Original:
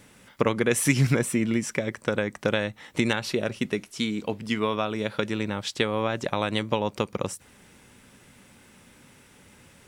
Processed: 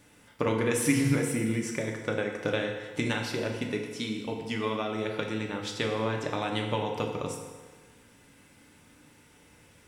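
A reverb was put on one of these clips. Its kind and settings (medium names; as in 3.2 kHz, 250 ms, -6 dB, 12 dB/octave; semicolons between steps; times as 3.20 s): FDN reverb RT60 1.4 s, low-frequency decay 0.85×, high-frequency decay 0.8×, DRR 0.5 dB; trim -6.5 dB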